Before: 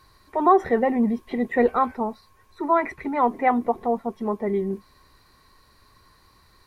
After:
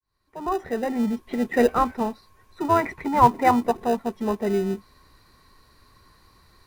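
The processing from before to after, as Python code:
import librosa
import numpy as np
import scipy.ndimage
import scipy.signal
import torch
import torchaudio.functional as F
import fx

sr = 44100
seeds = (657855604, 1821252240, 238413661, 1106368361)

p1 = fx.fade_in_head(x, sr, length_s=1.64)
p2 = fx.peak_eq(p1, sr, hz=940.0, db=10.0, octaves=0.27, at=(2.93, 3.66))
p3 = fx.sample_hold(p2, sr, seeds[0], rate_hz=1100.0, jitter_pct=0)
y = p2 + F.gain(torch.from_numpy(p3), -11.5).numpy()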